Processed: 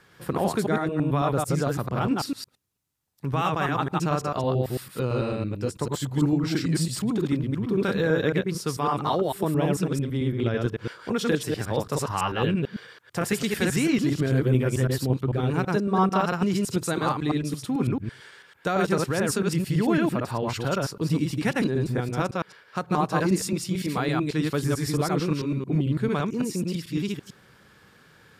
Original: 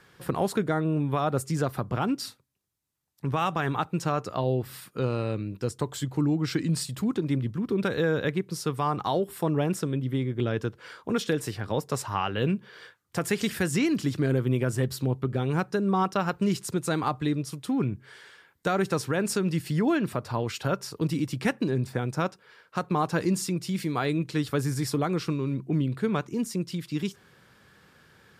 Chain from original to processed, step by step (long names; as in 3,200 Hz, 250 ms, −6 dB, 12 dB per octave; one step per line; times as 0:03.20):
delay that plays each chunk backwards 111 ms, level −1 dB